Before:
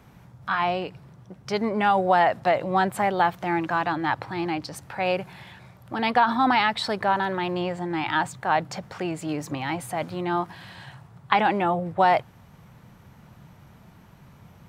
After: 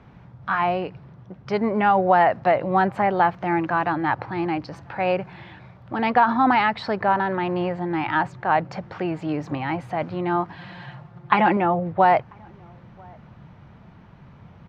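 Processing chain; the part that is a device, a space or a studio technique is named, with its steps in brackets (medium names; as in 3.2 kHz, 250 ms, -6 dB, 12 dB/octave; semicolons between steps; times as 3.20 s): 10.57–11.57 s: comb 5.7 ms, depth 71%; dynamic bell 3.5 kHz, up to -7 dB, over -50 dBFS, Q 3.5; shout across a valley (distance through air 230 m; echo from a far wall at 170 m, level -29 dB); trim +3.5 dB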